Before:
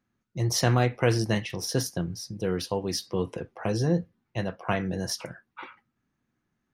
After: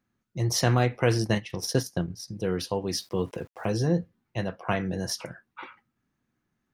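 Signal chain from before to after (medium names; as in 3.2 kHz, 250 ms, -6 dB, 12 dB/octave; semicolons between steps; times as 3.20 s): 1.27–2.28 s: transient shaper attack +3 dB, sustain -8 dB; 2.94–3.87 s: small samples zeroed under -52.5 dBFS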